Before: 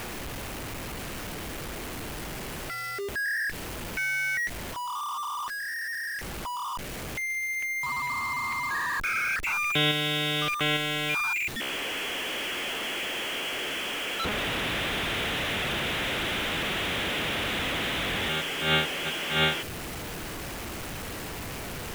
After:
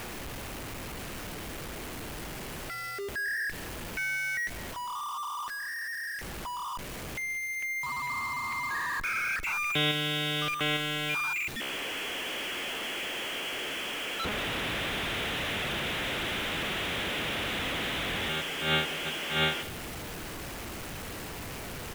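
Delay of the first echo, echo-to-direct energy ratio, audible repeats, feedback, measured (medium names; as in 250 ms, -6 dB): 194 ms, -18.0 dB, 2, 34%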